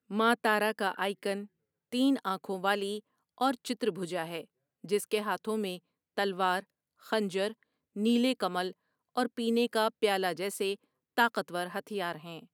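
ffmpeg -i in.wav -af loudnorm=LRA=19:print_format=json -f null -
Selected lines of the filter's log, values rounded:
"input_i" : "-31.6",
"input_tp" : "-11.3",
"input_lra" : "3.2",
"input_thresh" : "-42.0",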